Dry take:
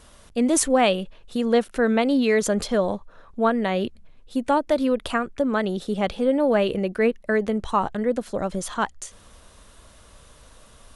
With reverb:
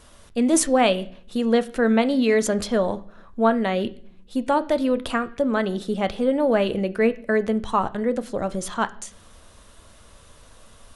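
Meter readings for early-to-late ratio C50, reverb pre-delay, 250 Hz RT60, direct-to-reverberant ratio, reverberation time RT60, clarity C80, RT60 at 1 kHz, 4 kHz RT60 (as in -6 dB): 19.5 dB, 9 ms, 1.0 s, 11.5 dB, 0.55 s, 23.0 dB, 0.50 s, 0.55 s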